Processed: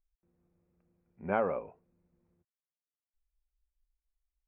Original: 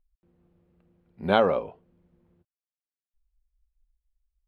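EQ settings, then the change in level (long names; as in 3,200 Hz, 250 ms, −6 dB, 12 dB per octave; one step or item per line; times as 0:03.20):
elliptic low-pass filter 2,500 Hz, stop band 40 dB
−8.5 dB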